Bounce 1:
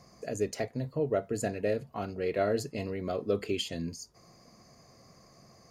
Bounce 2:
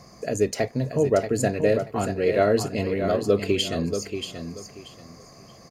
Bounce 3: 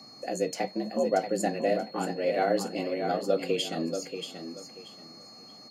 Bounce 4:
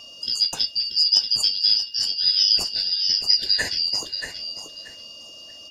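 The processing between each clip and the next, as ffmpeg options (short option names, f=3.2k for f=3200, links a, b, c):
-af "aecho=1:1:632|1264|1896:0.398|0.0916|0.0211,volume=8.5dB"
-af "afreqshift=79,flanger=delay=7.9:depth=6.4:regen=-52:speed=0.86:shape=sinusoidal,aeval=exprs='val(0)+0.00447*sin(2*PI*4300*n/s)':c=same,volume=-1.5dB"
-af "afftfilt=real='real(if(lt(b,272),68*(eq(floor(b/68),0)*3+eq(floor(b/68),1)*2+eq(floor(b/68),2)*1+eq(floor(b/68),3)*0)+mod(b,68),b),0)':imag='imag(if(lt(b,272),68*(eq(floor(b/68),0)*3+eq(floor(b/68),1)*2+eq(floor(b/68),2)*1+eq(floor(b/68),3)*0)+mod(b,68),b),0)':win_size=2048:overlap=0.75,volume=7dB"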